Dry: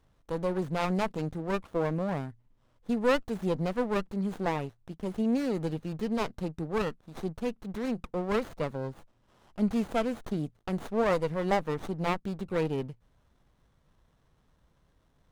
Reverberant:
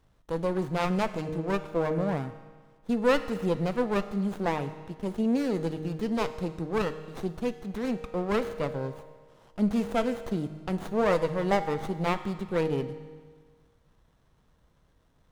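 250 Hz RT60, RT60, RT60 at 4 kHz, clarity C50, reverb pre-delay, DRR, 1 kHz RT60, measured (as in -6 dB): 1.6 s, 1.6 s, 1.5 s, 11.5 dB, 6 ms, 9.5 dB, 1.6 s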